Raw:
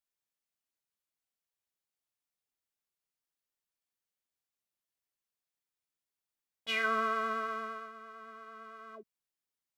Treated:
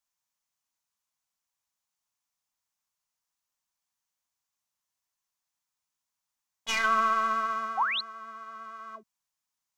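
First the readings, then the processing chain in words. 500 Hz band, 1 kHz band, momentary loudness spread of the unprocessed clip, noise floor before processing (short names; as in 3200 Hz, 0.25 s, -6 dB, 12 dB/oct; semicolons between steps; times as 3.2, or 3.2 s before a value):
-1.0 dB, +8.5 dB, 19 LU, under -85 dBFS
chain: tracing distortion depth 0.046 ms; painted sound rise, 7.77–8.01, 700–4500 Hz -33 dBFS; fifteen-band EQ 400 Hz -11 dB, 1000 Hz +8 dB, 6300 Hz +7 dB; gain +2.5 dB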